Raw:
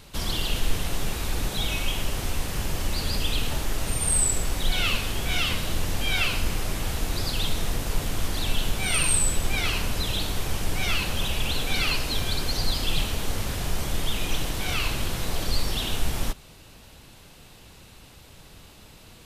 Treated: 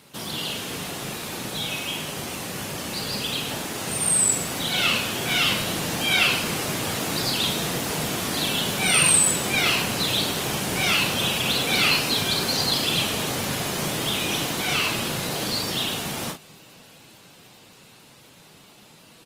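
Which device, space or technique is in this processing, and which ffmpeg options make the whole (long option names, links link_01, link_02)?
video call: -filter_complex "[0:a]highpass=frequency=130:width=0.5412,highpass=frequency=130:width=1.3066,asplit=2[link_01][link_02];[link_02]adelay=39,volume=-6.5dB[link_03];[link_01][link_03]amix=inputs=2:normalize=0,dynaudnorm=framelen=810:gausssize=11:maxgain=6dB" -ar 48000 -c:a libopus -b:a 24k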